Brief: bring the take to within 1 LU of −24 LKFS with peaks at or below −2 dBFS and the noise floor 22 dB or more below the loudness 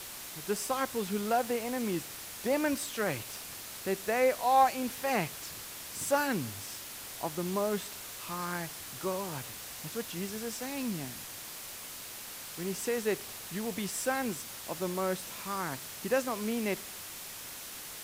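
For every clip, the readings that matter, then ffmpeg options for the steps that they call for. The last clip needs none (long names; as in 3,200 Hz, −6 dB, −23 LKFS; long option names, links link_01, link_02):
background noise floor −44 dBFS; target noise floor −56 dBFS; integrated loudness −33.5 LKFS; sample peak −13.5 dBFS; target loudness −24.0 LKFS
→ -af "afftdn=noise_reduction=12:noise_floor=-44"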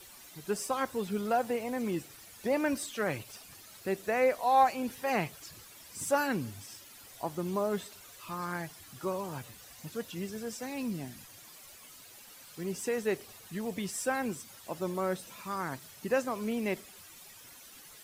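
background noise floor −53 dBFS; target noise floor −56 dBFS
→ -af "afftdn=noise_reduction=6:noise_floor=-53"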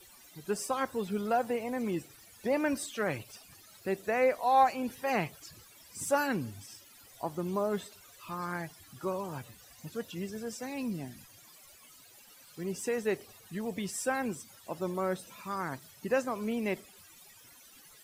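background noise floor −57 dBFS; integrated loudness −33.5 LKFS; sample peak −14.0 dBFS; target loudness −24.0 LKFS
→ -af "volume=9.5dB"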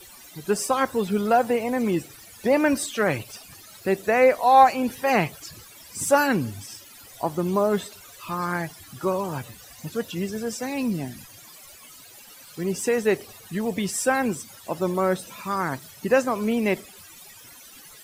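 integrated loudness −24.0 LKFS; sample peak −4.5 dBFS; background noise floor −47 dBFS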